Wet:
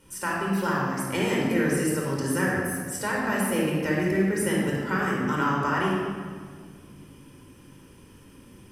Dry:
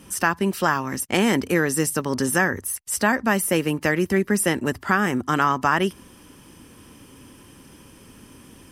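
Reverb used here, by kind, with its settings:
rectangular room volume 2,800 cubic metres, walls mixed, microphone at 4.7 metres
level −12 dB

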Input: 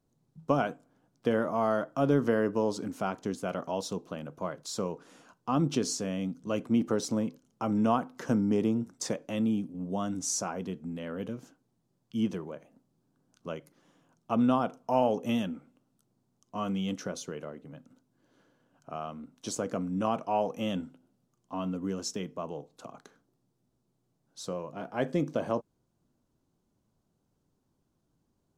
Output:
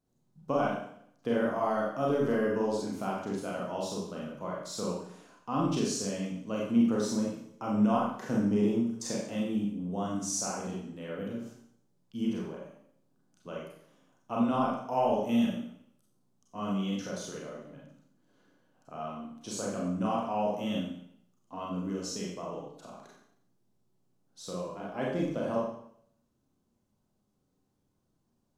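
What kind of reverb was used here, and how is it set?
four-comb reverb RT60 0.66 s, combs from 30 ms, DRR −4 dB
level −6 dB

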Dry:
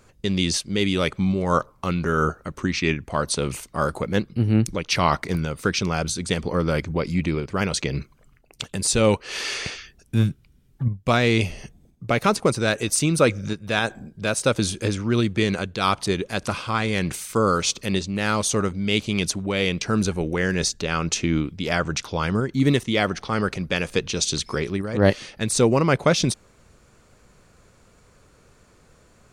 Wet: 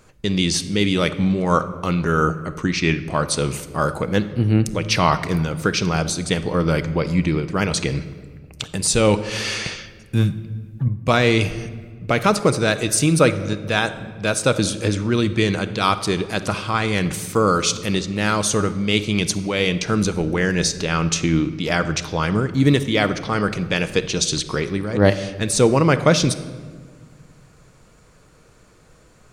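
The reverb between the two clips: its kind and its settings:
rectangular room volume 1,800 cubic metres, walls mixed, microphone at 0.56 metres
level +2.5 dB

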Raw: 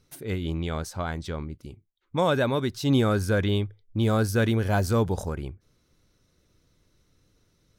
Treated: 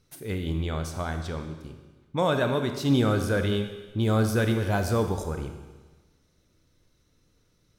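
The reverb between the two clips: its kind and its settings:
four-comb reverb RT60 1.3 s, combs from 25 ms, DRR 6 dB
level −1.5 dB

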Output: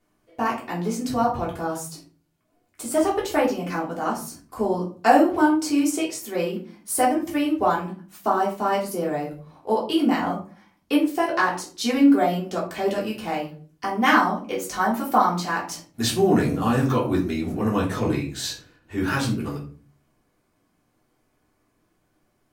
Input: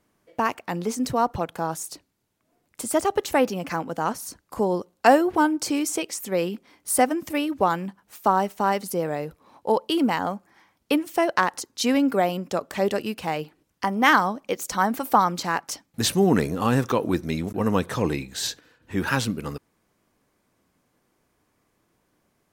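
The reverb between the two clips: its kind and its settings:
rectangular room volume 250 cubic metres, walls furnished, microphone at 3.3 metres
level −6.5 dB

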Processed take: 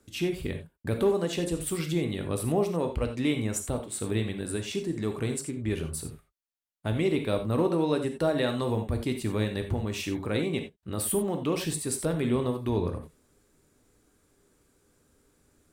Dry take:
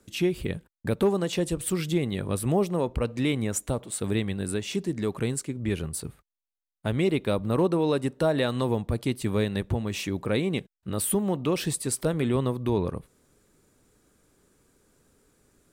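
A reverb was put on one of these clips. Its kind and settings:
reverb whose tail is shaped and stops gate 110 ms flat, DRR 5 dB
level −3 dB

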